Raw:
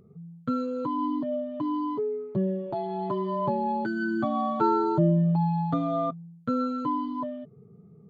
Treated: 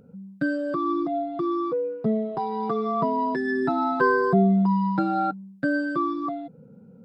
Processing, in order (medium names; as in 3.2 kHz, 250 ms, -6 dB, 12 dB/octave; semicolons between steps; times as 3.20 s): tape speed +15%; trim +3 dB